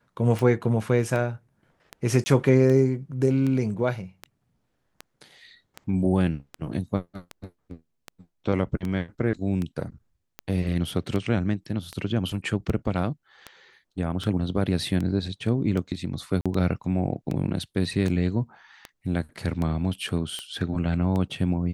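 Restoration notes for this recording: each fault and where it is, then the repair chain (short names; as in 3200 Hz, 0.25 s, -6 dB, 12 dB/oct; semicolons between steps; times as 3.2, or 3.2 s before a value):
tick 78 rpm
2.24–2.26 gap 20 ms
16.41–16.46 gap 46 ms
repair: de-click; interpolate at 2.24, 20 ms; interpolate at 16.41, 46 ms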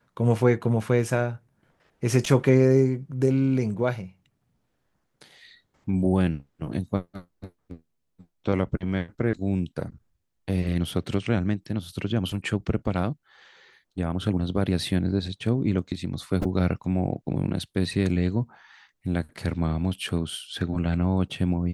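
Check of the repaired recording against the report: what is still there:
none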